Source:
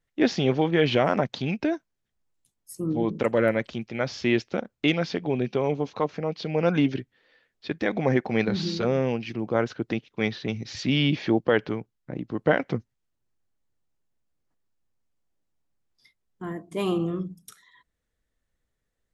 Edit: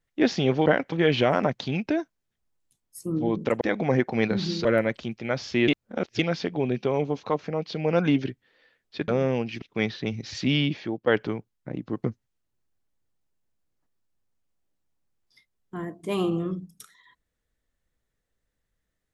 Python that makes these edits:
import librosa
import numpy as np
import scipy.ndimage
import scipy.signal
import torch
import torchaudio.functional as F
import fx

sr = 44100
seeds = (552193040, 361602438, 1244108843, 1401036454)

y = fx.edit(x, sr, fx.reverse_span(start_s=4.38, length_s=0.51),
    fx.move(start_s=7.78, length_s=1.04, to_s=3.35),
    fx.cut(start_s=9.36, length_s=0.68),
    fx.fade_out_to(start_s=10.98, length_s=0.51, curve='qua', floor_db=-10.0),
    fx.move(start_s=12.46, length_s=0.26, to_s=0.66), tone=tone)